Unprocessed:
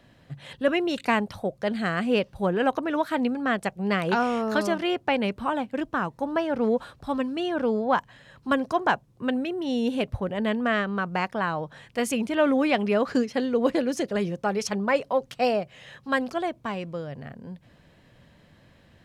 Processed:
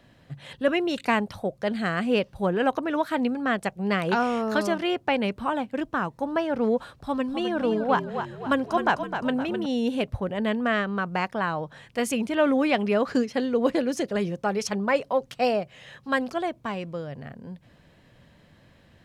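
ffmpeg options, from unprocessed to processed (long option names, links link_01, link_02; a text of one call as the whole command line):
ffmpeg -i in.wav -filter_complex "[0:a]asettb=1/sr,asplit=3[link_01][link_02][link_03];[link_01]atrim=end=6.994[link_04];[link_02]atrim=start=6.99:end=9.66,asetpts=PTS-STARTPTS,afade=type=in:duration=0.004:curve=qsin,afade=type=out:start_time=2.666:duration=0.004:curve=qsin,asplit=7[link_05][link_06][link_07][link_08][link_09][link_10][link_11];[link_06]adelay=258,afreqshift=-39,volume=-8dB[link_12];[link_07]adelay=516,afreqshift=-78,volume=-14.4dB[link_13];[link_08]adelay=774,afreqshift=-117,volume=-20.8dB[link_14];[link_09]adelay=1032,afreqshift=-156,volume=-27.1dB[link_15];[link_10]adelay=1290,afreqshift=-195,volume=-33.5dB[link_16];[link_11]adelay=1548,afreqshift=-234,volume=-39.9dB[link_17];[link_05][link_12][link_13][link_14][link_15][link_16][link_17]amix=inputs=7:normalize=0,atrim=end_sample=117747[link_18];[link_03]atrim=start=9.656[link_19];[link_04][link_18]acrossfade=duration=0.004:curve1=hsin:curve2=qsin[link_20];[link_20][link_19]acrossfade=duration=0.004:curve1=qsin:curve2=hsin" out.wav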